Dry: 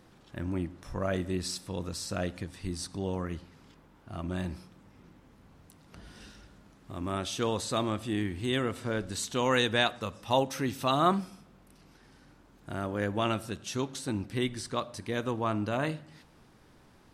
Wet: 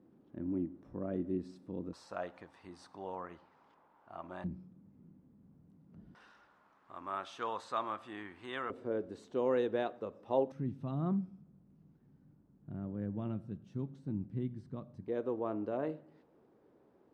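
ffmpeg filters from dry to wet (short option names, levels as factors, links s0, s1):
-af "asetnsamples=n=441:p=0,asendcmd='1.93 bandpass f 890;4.44 bandpass f 190;6.15 bandpass f 1100;8.7 bandpass f 420;10.52 bandpass f 160;15.08 bandpass f 430',bandpass=f=280:t=q:w=1.8:csg=0"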